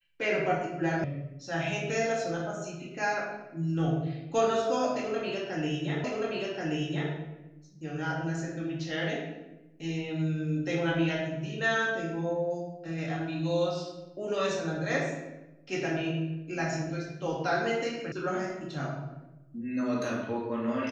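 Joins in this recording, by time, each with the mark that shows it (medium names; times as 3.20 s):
1.04 s: sound stops dead
6.04 s: repeat of the last 1.08 s
18.12 s: sound stops dead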